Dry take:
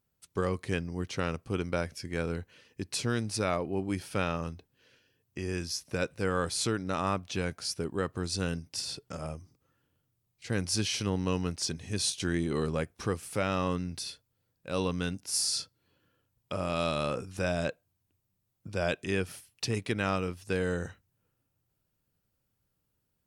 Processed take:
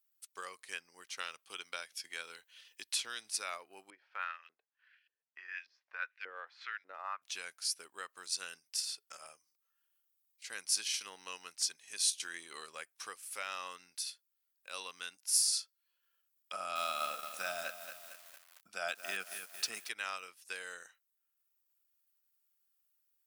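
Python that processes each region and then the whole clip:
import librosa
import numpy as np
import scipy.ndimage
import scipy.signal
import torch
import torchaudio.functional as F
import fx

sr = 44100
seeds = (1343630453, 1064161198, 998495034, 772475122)

y = fx.chain(x, sr, fx.peak_eq(hz=3400.0, db=8.5, octaves=0.45),
    fx.band_squash(depth_pct=40), at=(1.2, 3.31))
y = fx.chain(y, sr, fx.lowpass(hz=4600.0, slope=24),
    fx.peak_eq(hz=1800.0, db=8.5, octaves=1.0),
    fx.filter_lfo_bandpass(shape='saw_up', hz=1.7, low_hz=370.0, high_hz=2900.0, q=1.7), at=(3.9, 7.22))
y = fx.chain(y, sr, fx.small_body(hz=(200.0, 690.0, 1300.0), ring_ms=25, db=11),
    fx.echo_crushed(ms=226, feedback_pct=55, bits=7, wet_db=-8.0), at=(16.53, 19.89))
y = fx.transient(y, sr, attack_db=2, sustain_db=-5)
y = scipy.signal.sosfilt(scipy.signal.butter(2, 1300.0, 'highpass', fs=sr, output='sos'), y)
y = fx.high_shelf(y, sr, hz=8400.0, db=11.5)
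y = F.gain(torch.from_numpy(y), -5.0).numpy()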